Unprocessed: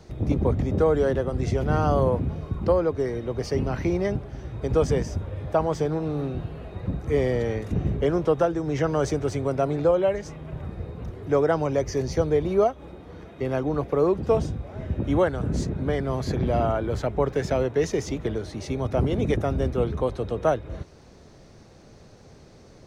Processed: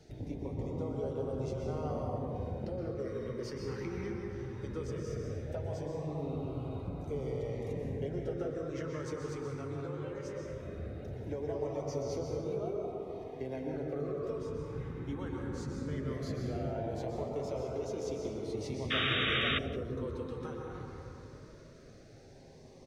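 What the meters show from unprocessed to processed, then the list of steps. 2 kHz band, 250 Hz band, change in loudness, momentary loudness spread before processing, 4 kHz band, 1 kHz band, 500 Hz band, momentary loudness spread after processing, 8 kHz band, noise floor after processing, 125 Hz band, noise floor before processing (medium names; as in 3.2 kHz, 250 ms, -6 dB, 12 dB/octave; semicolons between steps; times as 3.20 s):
-3.5 dB, -12.0 dB, -12.5 dB, 11 LU, +3.0 dB, -14.0 dB, -13.5 dB, 6 LU, -11.5 dB, -54 dBFS, -12.0 dB, -50 dBFS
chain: bass shelf 120 Hz -5.5 dB; compression, threshold -30 dBFS, peak gain reduction 13 dB; flange 0.14 Hz, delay 6.9 ms, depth 2.8 ms, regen -49%; plate-style reverb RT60 3.3 s, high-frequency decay 0.3×, pre-delay 110 ms, DRR -1.5 dB; LFO notch sine 0.18 Hz 620–1800 Hz; flange 0.45 Hz, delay 2.4 ms, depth 5.8 ms, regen -75%; painted sound noise, 18.90–19.59 s, 1.1–3.8 kHz -33 dBFS; echo from a far wall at 30 m, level -18 dB; trim +1 dB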